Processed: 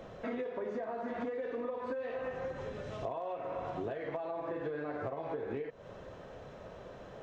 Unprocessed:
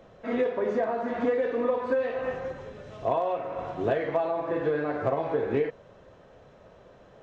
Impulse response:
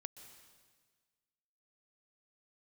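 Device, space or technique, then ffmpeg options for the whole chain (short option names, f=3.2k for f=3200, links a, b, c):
serial compression, peaks first: -af "acompressor=threshold=-35dB:ratio=6,acompressor=threshold=-48dB:ratio=1.5,volume=4.5dB"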